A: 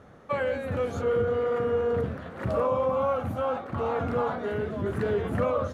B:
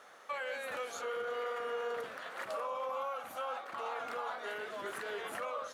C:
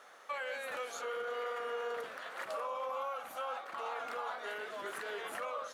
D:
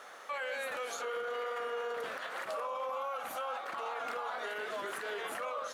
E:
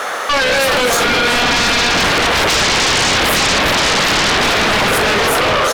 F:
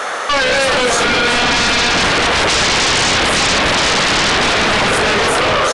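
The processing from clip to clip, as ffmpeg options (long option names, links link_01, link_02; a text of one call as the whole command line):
ffmpeg -i in.wav -af "highpass=770,highshelf=frequency=2700:gain=9.5,alimiter=level_in=5.5dB:limit=-24dB:level=0:latency=1:release=402,volume=-5.5dB" out.wav
ffmpeg -i in.wav -af "lowshelf=frequency=190:gain=-9" out.wav
ffmpeg -i in.wav -af "alimiter=level_in=12dB:limit=-24dB:level=0:latency=1:release=83,volume=-12dB,volume=6.5dB" out.wav
ffmpeg -i in.wav -filter_complex "[0:a]acrossover=split=850[link_01][link_02];[link_01]dynaudnorm=framelen=240:gausssize=11:maxgain=13dB[link_03];[link_03][link_02]amix=inputs=2:normalize=0,aecho=1:1:375|750|1125|1500|1875|2250:0.299|0.164|0.0903|0.0497|0.0273|0.015,aeval=exprs='0.133*sin(PI/2*8.91*val(0)/0.133)':channel_layout=same,volume=7dB" out.wav
ffmpeg -i in.wav -af "aresample=22050,aresample=44100" out.wav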